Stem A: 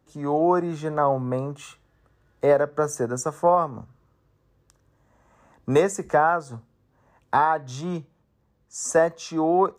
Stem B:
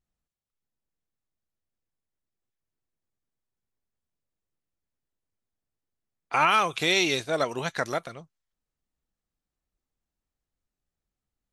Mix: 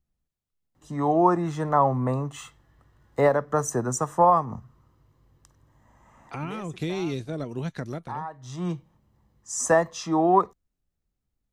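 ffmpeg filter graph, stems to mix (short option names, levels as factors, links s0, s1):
-filter_complex "[0:a]aecho=1:1:1:0.38,adelay=750,volume=1.12[s0];[1:a]lowshelf=f=380:g=10,acrossover=split=350[s1][s2];[s2]acompressor=threshold=0.0126:ratio=4[s3];[s1][s3]amix=inputs=2:normalize=0,volume=0.794,asplit=2[s4][s5];[s5]apad=whole_len=464499[s6];[s0][s6]sidechaincompress=threshold=0.00126:ratio=4:attack=46:release=366[s7];[s7][s4]amix=inputs=2:normalize=0"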